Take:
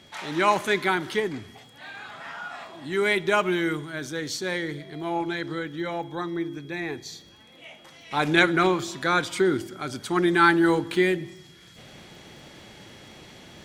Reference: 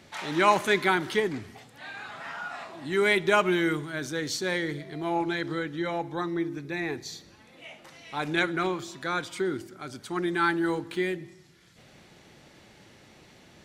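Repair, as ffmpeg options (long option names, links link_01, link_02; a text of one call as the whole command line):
ffmpeg -i in.wav -af "adeclick=threshold=4,bandreject=frequency=3300:width=30,asetnsamples=nb_out_samples=441:pad=0,asendcmd='8.11 volume volume -7dB',volume=0dB" out.wav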